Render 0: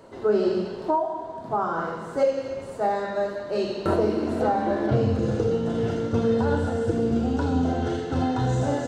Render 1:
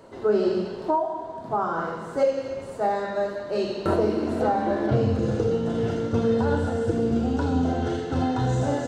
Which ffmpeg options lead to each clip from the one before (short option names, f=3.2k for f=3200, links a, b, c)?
-af anull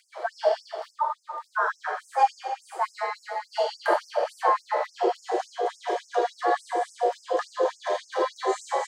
-af "afreqshift=260,afftfilt=real='re*gte(b*sr/1024,330*pow(5100/330,0.5+0.5*sin(2*PI*3.5*pts/sr)))':imag='im*gte(b*sr/1024,330*pow(5100/330,0.5+0.5*sin(2*PI*3.5*pts/sr)))':win_size=1024:overlap=0.75,volume=2dB"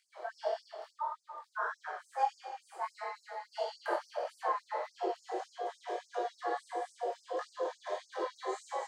-af "flanger=delay=19.5:depth=5.4:speed=1.6,volume=-8dB"